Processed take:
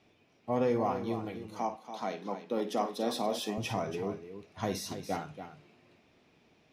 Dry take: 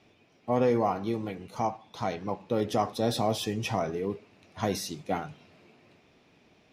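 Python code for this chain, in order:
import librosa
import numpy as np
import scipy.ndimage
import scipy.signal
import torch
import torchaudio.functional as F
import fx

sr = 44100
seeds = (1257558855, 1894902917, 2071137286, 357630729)

y = fx.steep_highpass(x, sr, hz=180.0, slope=36, at=(1.47, 3.58))
y = fx.echo_multitap(y, sr, ms=(53, 284), db=(-12.5, -10.0))
y = y * 10.0 ** (-4.5 / 20.0)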